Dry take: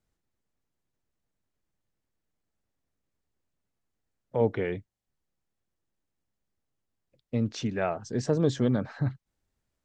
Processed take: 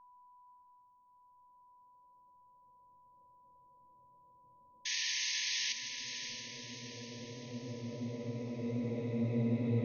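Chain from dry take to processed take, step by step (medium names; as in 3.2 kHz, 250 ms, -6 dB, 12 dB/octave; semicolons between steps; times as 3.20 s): level-controlled noise filter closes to 570 Hz, open at -26 dBFS; Paulstretch 26×, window 0.50 s, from 6.90 s; painted sound noise, 4.85–5.73 s, 1.7–6.6 kHz -35 dBFS; whistle 990 Hz -57 dBFS; echo that smears into a reverb 627 ms, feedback 50%, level -7 dB; trim -1 dB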